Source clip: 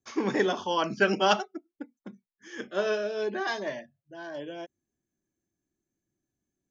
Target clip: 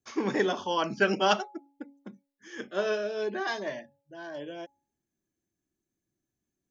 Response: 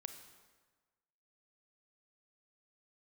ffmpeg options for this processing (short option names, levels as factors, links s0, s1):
-af "bandreject=f=280.2:t=h:w=4,bandreject=f=560.4:t=h:w=4,bandreject=f=840.6:t=h:w=4,volume=0.891"